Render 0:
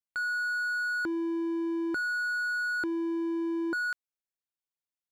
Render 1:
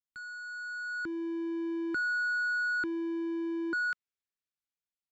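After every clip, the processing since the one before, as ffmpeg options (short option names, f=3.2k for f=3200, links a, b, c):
-filter_complex "[0:a]firequalizer=gain_entry='entry(190,0);entry(660,-23);entry(1300,-11);entry(7500,-5);entry(11000,-30)':delay=0.05:min_phase=1,acrossover=split=420|4000[a][b][c];[b]dynaudnorm=f=420:g=5:m=12.5dB[d];[a][d][c]amix=inputs=3:normalize=0,volume=-1.5dB"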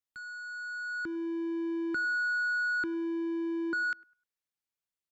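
-filter_complex "[0:a]asplit=2[a][b];[b]adelay=102,lowpass=f=1.2k:p=1,volume=-22dB,asplit=2[c][d];[d]adelay=102,lowpass=f=1.2k:p=1,volume=0.4,asplit=2[e][f];[f]adelay=102,lowpass=f=1.2k:p=1,volume=0.4[g];[a][c][e][g]amix=inputs=4:normalize=0"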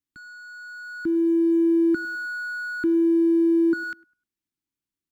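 -af "acrusher=bits=8:mode=log:mix=0:aa=0.000001,lowshelf=f=410:t=q:w=3:g=9"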